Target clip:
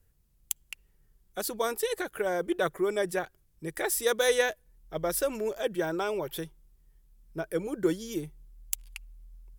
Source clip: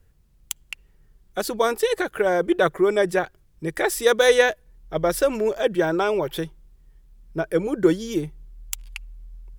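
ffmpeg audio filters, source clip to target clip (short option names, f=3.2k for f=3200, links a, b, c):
-af "equalizer=f=14k:w=0.37:g=10.5,volume=-9dB"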